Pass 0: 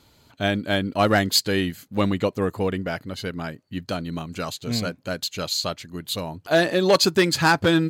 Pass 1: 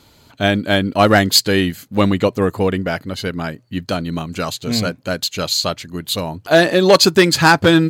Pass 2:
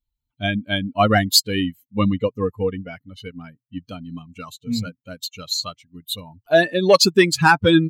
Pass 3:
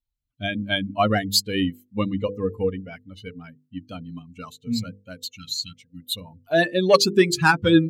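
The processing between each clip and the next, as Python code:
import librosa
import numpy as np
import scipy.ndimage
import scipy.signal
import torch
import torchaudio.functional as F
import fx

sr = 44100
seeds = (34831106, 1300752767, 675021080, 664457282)

y1 = fx.hum_notches(x, sr, base_hz=60, count=2)
y1 = F.gain(torch.from_numpy(y1), 7.0).numpy()
y2 = fx.bin_expand(y1, sr, power=2.0)
y3 = fx.hum_notches(y2, sr, base_hz=50, count=10)
y3 = fx.rotary_switch(y3, sr, hz=1.0, then_hz=6.0, switch_at_s=1.91)
y3 = fx.spec_repair(y3, sr, seeds[0], start_s=5.37, length_s=0.77, low_hz=340.0, high_hz=1300.0, source='before')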